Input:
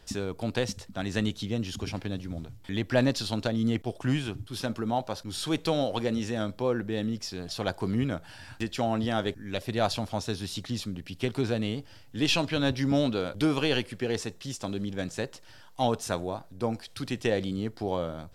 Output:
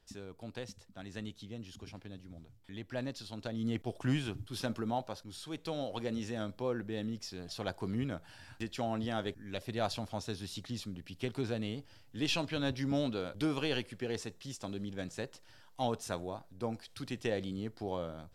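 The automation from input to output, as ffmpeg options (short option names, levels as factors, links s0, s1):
-af "volume=1.33,afade=t=in:st=3.33:d=0.67:silence=0.316228,afade=t=out:st=4.75:d=0.71:silence=0.316228,afade=t=in:st=5.46:d=0.71:silence=0.446684"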